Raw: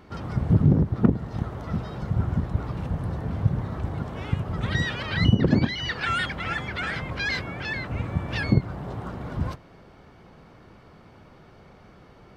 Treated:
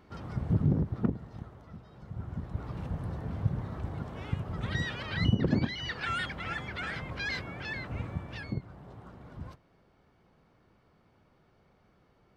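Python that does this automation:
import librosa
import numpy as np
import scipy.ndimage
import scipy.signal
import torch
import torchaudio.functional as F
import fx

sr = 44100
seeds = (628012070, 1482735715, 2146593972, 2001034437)

y = fx.gain(x, sr, db=fx.line((0.93, -8.0), (1.82, -20.0), (2.76, -7.0), (8.03, -7.0), (8.49, -15.0)))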